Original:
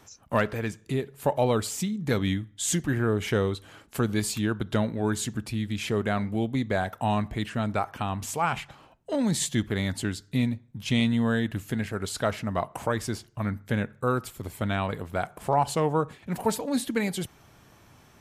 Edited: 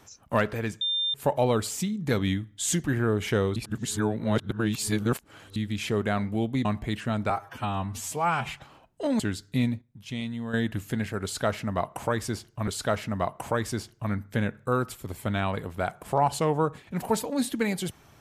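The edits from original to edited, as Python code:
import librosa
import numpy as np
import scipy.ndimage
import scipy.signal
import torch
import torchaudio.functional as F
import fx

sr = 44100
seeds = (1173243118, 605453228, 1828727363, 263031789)

y = fx.edit(x, sr, fx.bleep(start_s=0.81, length_s=0.33, hz=3600.0, db=-24.0),
    fx.reverse_span(start_s=3.56, length_s=2.0),
    fx.cut(start_s=6.65, length_s=0.49),
    fx.stretch_span(start_s=7.79, length_s=0.81, factor=1.5),
    fx.cut(start_s=9.28, length_s=0.71),
    fx.clip_gain(start_s=10.61, length_s=0.72, db=-9.5),
    fx.repeat(start_s=12.03, length_s=1.44, count=2), tone=tone)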